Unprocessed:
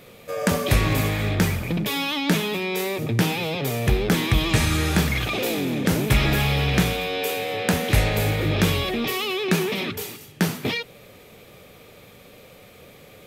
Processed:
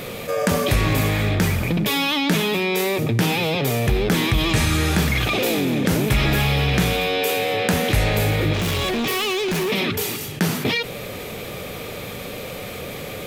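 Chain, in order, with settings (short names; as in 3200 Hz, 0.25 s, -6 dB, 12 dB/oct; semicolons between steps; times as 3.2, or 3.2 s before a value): 8.53–9.7 hard clip -25.5 dBFS, distortion -15 dB; fast leveller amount 50%; gain -1 dB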